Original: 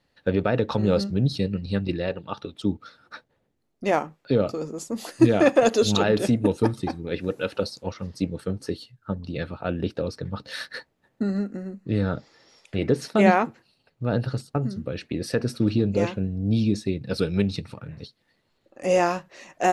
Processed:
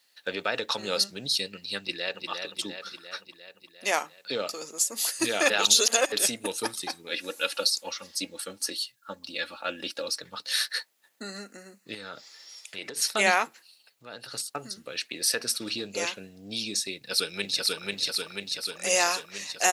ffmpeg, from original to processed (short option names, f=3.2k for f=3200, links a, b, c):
-filter_complex "[0:a]asplit=2[a][b];[b]afade=t=in:st=1.79:d=0.01,afade=t=out:st=2.28:d=0.01,aecho=0:1:350|700|1050|1400|1750|2100|2450|2800|3150|3500:0.530884|0.345075|0.224299|0.145794|0.0947662|0.061598|0.0400387|0.0260252|0.0169164|0.0109956[c];[a][c]amix=inputs=2:normalize=0,asettb=1/sr,asplit=3[d][e][f];[d]atrim=end=7.094[g];[e]atrim=start=7.09:end=10.22,asetpts=PTS-STARTPTS,afade=t=in:d=0.004:c=qsin,afade=t=out:st=3.126:d=0.004:c=qsin,aecho=1:1:3.6:0.62,atrim=end_sample=138033[h];[f]atrim=start=10.216[i];[g][h]acrossfade=d=0.004:c1=hsin:c2=qsin[j];[j][i]acrossfade=d=0.004:c1=qsin:c2=hsin,asettb=1/sr,asplit=3[k][l][m];[k]atrim=end=11.944[n];[l]atrim=start=11.94:end=12.97,asetpts=PTS-STARTPTS,afade=t=in:d=0.004:c=qsin,afade=t=out:st=1.026:d=0.004:c=qsin,acompressor=threshold=-26dB:ratio=5:attack=3.2:release=140:knee=1:detection=peak[o];[m]atrim=start=12.966[p];[n][o]acrossfade=d=0.004:c1=hsin:c2=qsin[q];[q][p]acrossfade=d=0.004:c1=qsin:c2=hsin,asplit=3[r][s][t];[r]afade=t=out:st=13.47:d=0.02[u];[s]acompressor=threshold=-35dB:ratio=2:attack=3.2:release=140:knee=1:detection=peak,afade=t=in:st=13.47:d=0.02,afade=t=out:st=14.32:d=0.02[v];[t]afade=t=in:st=14.32:d=0.02[w];[u][v][w]amix=inputs=3:normalize=0,asplit=2[x][y];[y]afade=t=in:st=16.93:d=0.01,afade=t=out:st=17.83:d=0.01,aecho=0:1:490|980|1470|1960|2450|2940|3430|3920|4410|4900|5390|5880:0.891251|0.623876|0.436713|0.305699|0.213989|0.149793|0.104855|0.0733983|0.0513788|0.0359652|0.0251756|0.0176229[z];[x][z]amix=inputs=2:normalize=0,asplit=3[aa][ab][ac];[aa]atrim=end=5.502[ad];[ab]atrim=start=5.498:end=6.122,asetpts=PTS-STARTPTS,areverse[ae];[ac]atrim=start=6.118[af];[ad][ae]acrossfade=d=0.004:c1=hsin:c2=hsin[ag];[ag][af]acrossfade=d=0.004:c1=hsin:c2=hsin,highpass=f=180:p=1,aderivative,alimiter=level_in=20.5dB:limit=-1dB:release=50:level=0:latency=1,volume=-6dB"